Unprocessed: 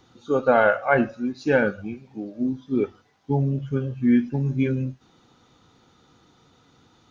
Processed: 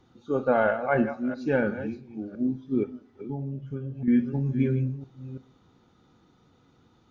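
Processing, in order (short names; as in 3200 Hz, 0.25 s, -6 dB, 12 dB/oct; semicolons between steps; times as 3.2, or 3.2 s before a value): reverse delay 0.336 s, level -11.5 dB; high shelf 4100 Hz -6 dB; on a send at -12.5 dB: reverb RT60 0.50 s, pre-delay 3 ms; 2.83–4.08 on the sum: compressor 2:1, threshold -33 dBFS, peak gain reduction 9 dB; low shelf 490 Hz +5.5 dB; gain -7 dB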